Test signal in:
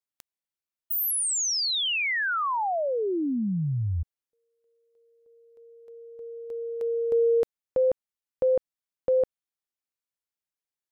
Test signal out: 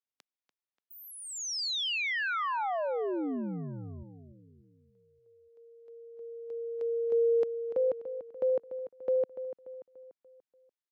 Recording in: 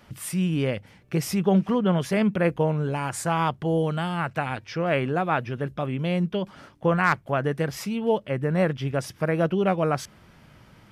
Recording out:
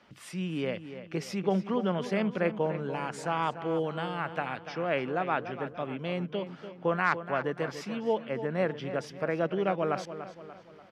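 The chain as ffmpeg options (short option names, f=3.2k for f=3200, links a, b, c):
-filter_complex "[0:a]acrossover=split=190 6400:gain=0.2 1 0.126[a][b][c];[a][b][c]amix=inputs=3:normalize=0,asplit=2[d][e];[e]adelay=291,lowpass=f=3.7k:p=1,volume=-11dB,asplit=2[f][g];[g]adelay=291,lowpass=f=3.7k:p=1,volume=0.47,asplit=2[h][i];[i]adelay=291,lowpass=f=3.7k:p=1,volume=0.47,asplit=2[j][k];[k]adelay=291,lowpass=f=3.7k:p=1,volume=0.47,asplit=2[l][m];[m]adelay=291,lowpass=f=3.7k:p=1,volume=0.47[n];[d][f][h][j][l][n]amix=inputs=6:normalize=0,volume=-5dB"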